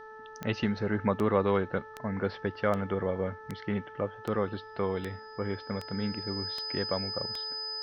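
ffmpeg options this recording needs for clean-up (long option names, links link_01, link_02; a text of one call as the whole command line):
ffmpeg -i in.wav -af "adeclick=threshold=4,bandreject=frequency=436.4:width_type=h:width=4,bandreject=frequency=872.8:width_type=h:width=4,bandreject=frequency=1309.2:width_type=h:width=4,bandreject=frequency=1745.6:width_type=h:width=4,bandreject=frequency=5000:width=30,agate=range=-21dB:threshold=-39dB" out.wav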